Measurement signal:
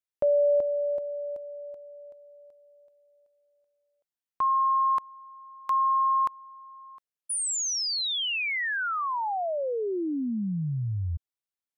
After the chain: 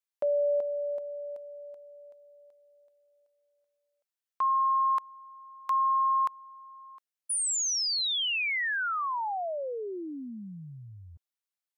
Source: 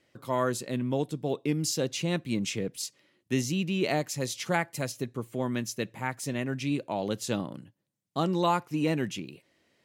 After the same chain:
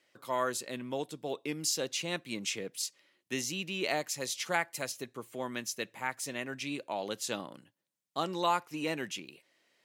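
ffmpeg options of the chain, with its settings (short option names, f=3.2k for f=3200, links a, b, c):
-af "highpass=f=770:p=1"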